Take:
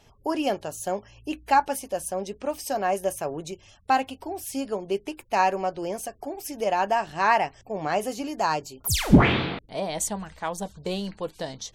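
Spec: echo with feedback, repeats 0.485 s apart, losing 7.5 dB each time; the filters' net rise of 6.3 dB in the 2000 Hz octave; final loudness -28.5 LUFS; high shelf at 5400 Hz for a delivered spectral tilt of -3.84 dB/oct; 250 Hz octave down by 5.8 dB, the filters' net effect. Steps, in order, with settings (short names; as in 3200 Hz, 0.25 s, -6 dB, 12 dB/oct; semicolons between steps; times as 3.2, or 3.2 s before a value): bell 250 Hz -8 dB; bell 2000 Hz +8.5 dB; high shelf 5400 Hz -4 dB; feedback echo 0.485 s, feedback 42%, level -7.5 dB; gain -3.5 dB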